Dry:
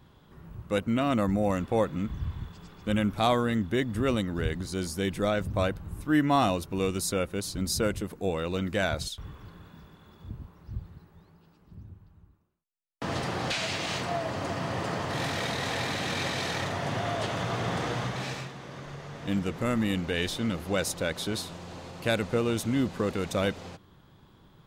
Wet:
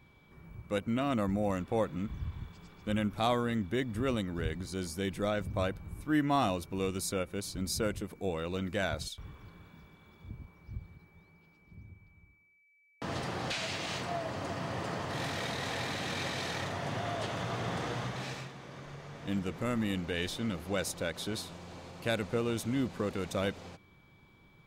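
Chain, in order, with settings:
steady tone 2,300 Hz −60 dBFS
every ending faded ahead of time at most 390 dB per second
level −5 dB

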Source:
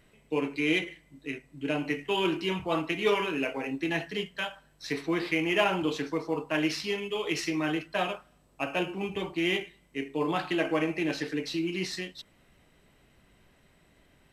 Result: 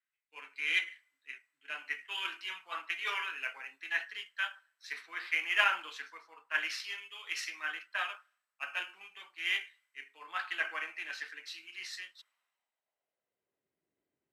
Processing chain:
high-pass filter sweep 1,500 Hz → 350 Hz, 0:11.99–0:13.70
multiband upward and downward expander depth 70%
level −7 dB

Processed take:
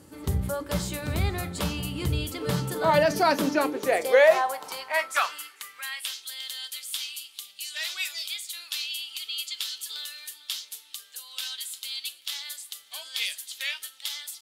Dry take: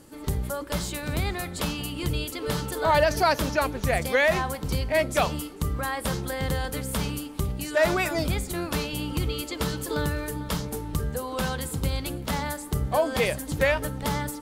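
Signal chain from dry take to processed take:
high-pass filter sweep 83 Hz → 3,400 Hz, 0:02.25–0:06.22
mains-hum notches 50/100/150/200 Hz
tempo change 1×
on a send: convolution reverb, pre-delay 5 ms, DRR 10.5 dB
on the sum: level −1.5 dB

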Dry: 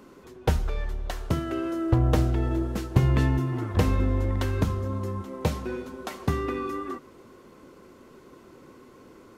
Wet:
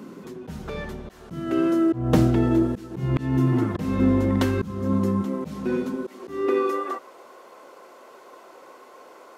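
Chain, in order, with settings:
low-shelf EQ 98 Hz +11.5 dB
high-pass filter sweep 190 Hz → 670 Hz, 0:05.83–0:07.03
volume swells 306 ms
level +5 dB

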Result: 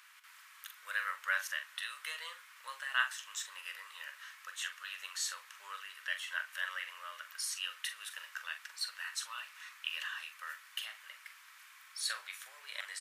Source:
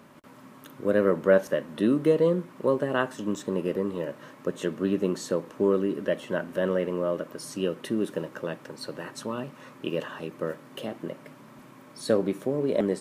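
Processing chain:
inverse Chebyshev high-pass filter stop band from 340 Hz, stop band 70 dB
double-tracking delay 43 ms −9.5 dB
level +2.5 dB

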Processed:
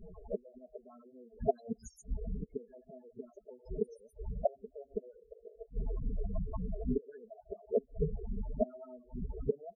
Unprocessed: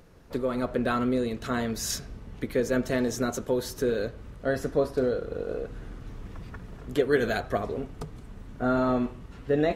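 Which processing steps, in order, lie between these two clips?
adaptive Wiener filter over 9 samples
all-pass phaser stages 4, 3.5 Hz, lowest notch 170–2,700 Hz
gate with flip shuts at −24 dBFS, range −35 dB
parametric band 760 Hz +11.5 dB 1.5 octaves
comb filter 4.7 ms, depth 45%
on a send: delay with a high-pass on its return 133 ms, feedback 64%, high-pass 5,300 Hz, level −6 dB
on the sum: spectral peaks only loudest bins 8
level +3.5 dB

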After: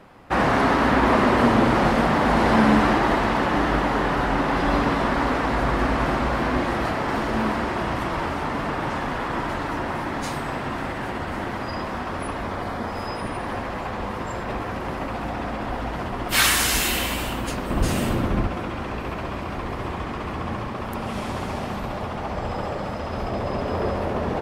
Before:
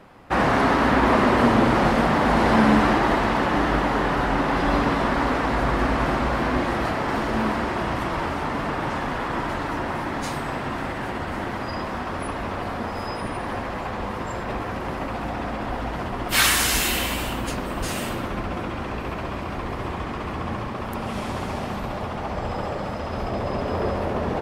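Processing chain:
0:12.43–0:12.90: notch filter 2,700 Hz, Q 8.9
0:17.70–0:18.47: low-shelf EQ 400 Hz +9 dB

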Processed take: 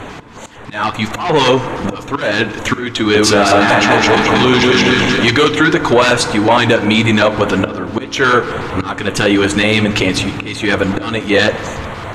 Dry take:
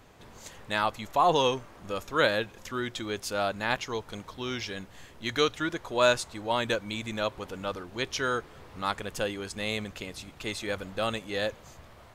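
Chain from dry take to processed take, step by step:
0:03.04–0:05.31: feedback delay that plays each chunk backwards 112 ms, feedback 72%, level −1 dB
flanger 1.7 Hz, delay 1.8 ms, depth 7.9 ms, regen −53%
soft clipping −30 dBFS, distortion −8 dB
volume swells 543 ms
auto-filter notch square 5.4 Hz 560–5,000 Hz
high-frequency loss of the air 70 metres
feedback delay network reverb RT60 1.9 s, low-frequency decay 1.45×, high-frequency decay 0.4×, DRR 12.5 dB
downward compressor, threshold −39 dBFS, peak gain reduction 7 dB
low-shelf EQ 75 Hz −10 dB
boost into a limiter +34 dB
level −1 dB

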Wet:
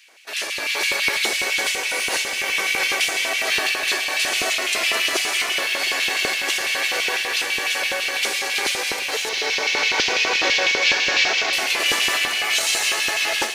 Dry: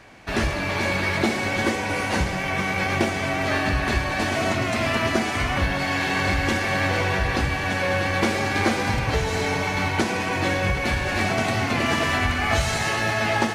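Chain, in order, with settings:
0:09.29–0:11.53: variable-slope delta modulation 32 kbit/s
spectral tilt +4.5 dB per octave
automatic gain control gain up to 11.5 dB
auto-filter high-pass square 6 Hz 410–2,700 Hz
feedback echo at a low word length 357 ms, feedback 80%, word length 6 bits, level −14 dB
level −8.5 dB

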